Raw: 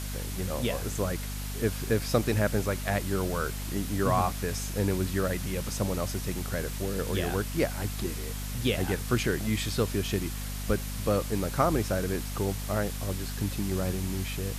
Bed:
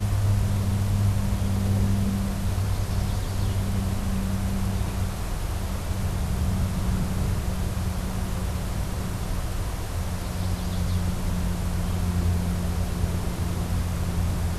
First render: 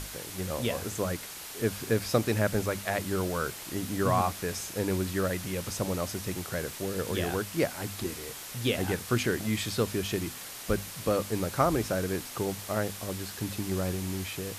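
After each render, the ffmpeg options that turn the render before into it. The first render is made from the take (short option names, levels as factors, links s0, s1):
-af "bandreject=f=50:t=h:w=6,bandreject=f=100:t=h:w=6,bandreject=f=150:t=h:w=6,bandreject=f=200:t=h:w=6,bandreject=f=250:t=h:w=6"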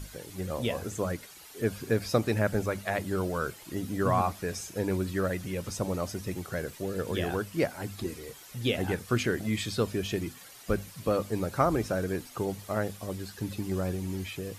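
-af "afftdn=nr=11:nf=-42"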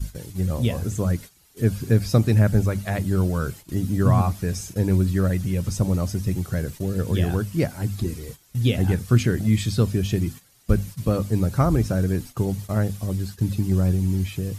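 -af "agate=range=0.251:threshold=0.00631:ratio=16:detection=peak,bass=f=250:g=15,treble=f=4000:g=5"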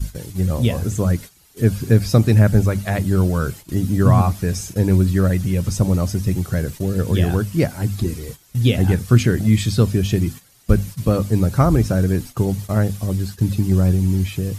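-af "volume=1.68,alimiter=limit=0.891:level=0:latency=1"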